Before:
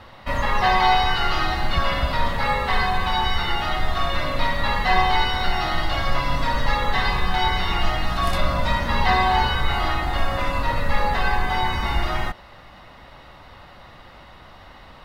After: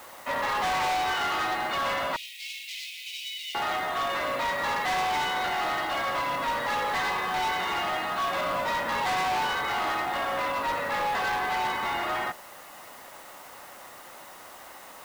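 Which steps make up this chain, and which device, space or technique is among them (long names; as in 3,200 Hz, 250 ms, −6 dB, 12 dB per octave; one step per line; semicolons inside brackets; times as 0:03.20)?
aircraft radio (band-pass filter 360–2,600 Hz; hard clipping −25 dBFS, distortion −7 dB; white noise bed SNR 22 dB)
0:02.16–0:03.55: Butterworth high-pass 2,300 Hz 72 dB per octave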